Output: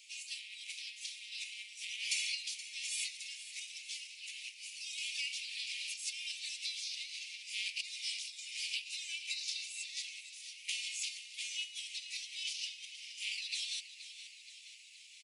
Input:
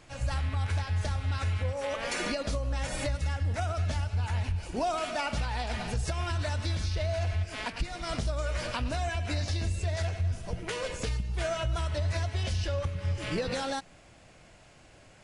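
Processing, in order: compression 2:1, threshold -33 dBFS, peak gain reduction 5 dB; steep high-pass 2.3 kHz 72 dB/octave; frequency-shifting echo 473 ms, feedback 60%, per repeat -34 Hz, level -13 dB; trim +4.5 dB

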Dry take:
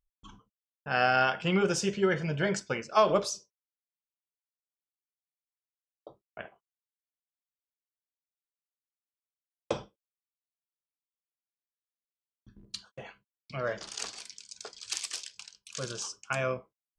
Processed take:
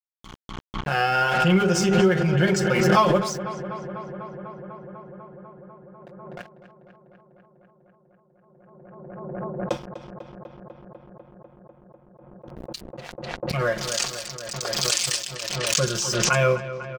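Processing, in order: bass shelf 180 Hz +7.5 dB; hum notches 50/100/150/200/250/300/350/400 Hz; comb 5.6 ms, depth 79%; gain riding within 4 dB 0.5 s; crossover distortion -46.5 dBFS; filtered feedback delay 248 ms, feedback 84%, low-pass 3.4 kHz, level -13 dB; swell ahead of each attack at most 29 dB/s; trim +5 dB

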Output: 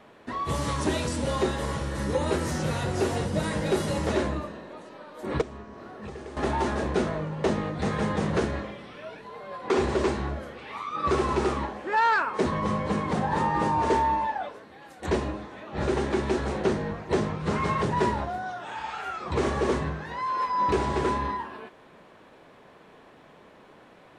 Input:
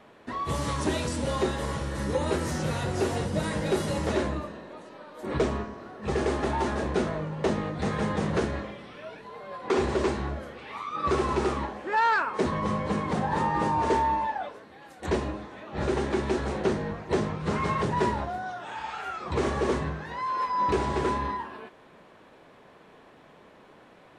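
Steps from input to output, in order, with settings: 5.41–6.37 s: compression 20:1, threshold -37 dBFS, peak gain reduction 16.5 dB; trim +1 dB

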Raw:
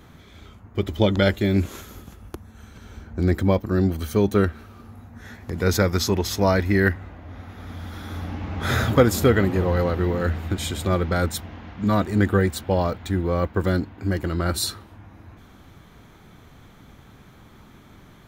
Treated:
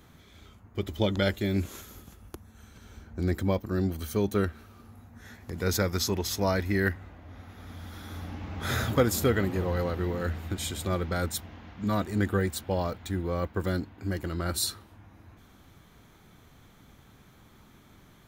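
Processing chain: treble shelf 4.4 kHz +6.5 dB; trim -7.5 dB

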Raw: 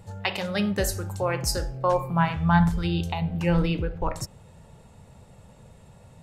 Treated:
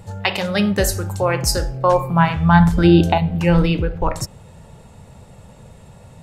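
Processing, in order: 2.78–3.18 s: small resonant body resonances 300/610/1500 Hz, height 14 dB, ringing for 20 ms; trim +7.5 dB

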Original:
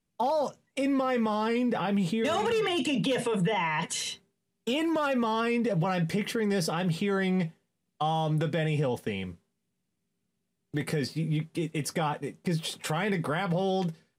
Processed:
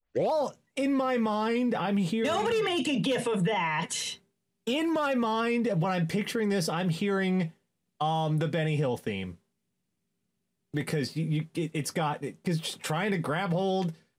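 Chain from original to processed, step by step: tape start-up on the opening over 0.32 s

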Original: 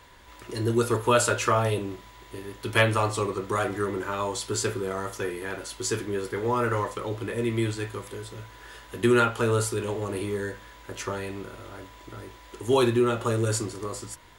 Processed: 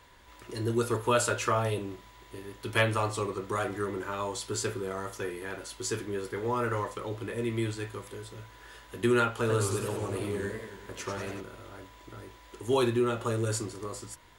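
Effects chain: 9.31–11.41 s: modulated delay 94 ms, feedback 62%, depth 180 cents, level -6 dB; trim -4.5 dB

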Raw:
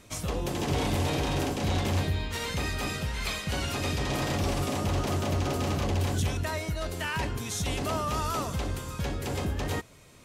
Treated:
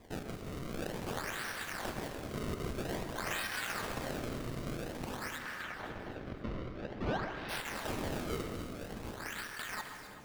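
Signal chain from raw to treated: tracing distortion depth 0.11 ms; peaking EQ 2.3 kHz -8 dB 1.2 oct; saturation -36.5 dBFS, distortion -7 dB; ladder high-pass 1.5 kHz, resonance 65%; decimation with a swept rate 30×, swing 160% 0.5 Hz; 5.38–7.49 s: distance through air 240 m; echo whose repeats swap between lows and highs 130 ms, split 2.4 kHz, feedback 68%, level -8.5 dB; gated-style reverb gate 380 ms flat, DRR 8 dB; trim +14 dB

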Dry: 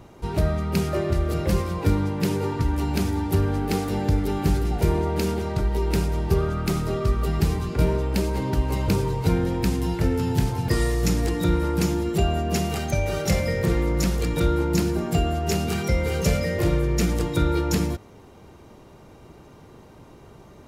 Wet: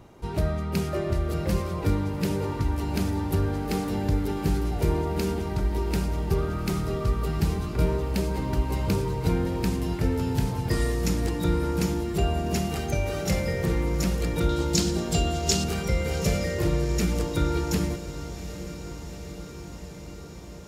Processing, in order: 14.49–15.64 s: high-order bell 5.1 kHz +11 dB; echo that smears into a reverb 804 ms, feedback 74%, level -13.5 dB; trim -3.5 dB

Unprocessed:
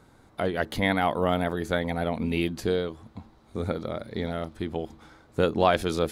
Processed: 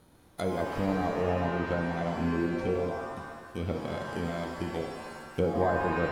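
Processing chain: bit-reversed sample order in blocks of 16 samples; low-pass that closes with the level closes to 780 Hz, closed at -21.5 dBFS; pitch-shifted reverb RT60 1.3 s, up +7 st, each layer -2 dB, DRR 4 dB; trim -4 dB

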